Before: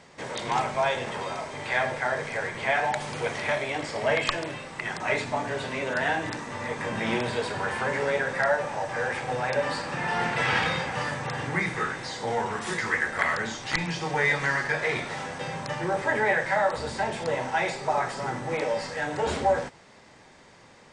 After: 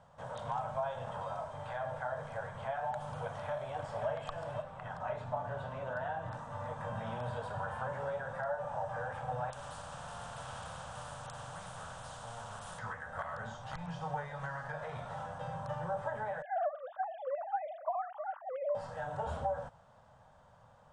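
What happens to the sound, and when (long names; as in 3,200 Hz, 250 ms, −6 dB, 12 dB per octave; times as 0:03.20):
0:03.23–0:04.07: delay throw 530 ms, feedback 40%, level −7 dB
0:04.62–0:06.34: low-pass filter 3,600 Hz 6 dB per octave
0:09.50–0:12.79: every bin compressed towards the loudest bin 4 to 1
0:16.42–0:18.75: three sine waves on the formant tracks
whole clip: parametric band 350 Hz −9.5 dB 0.69 octaves; downward compressor, threshold −27 dBFS; drawn EQ curve 120 Hz 0 dB, 350 Hz −17 dB, 590 Hz −1 dB, 1,500 Hz −7 dB, 2,100 Hz −25 dB, 3,200 Hz −14 dB, 4,500 Hz −22 dB, 9,700 Hz −15 dB; level −1.5 dB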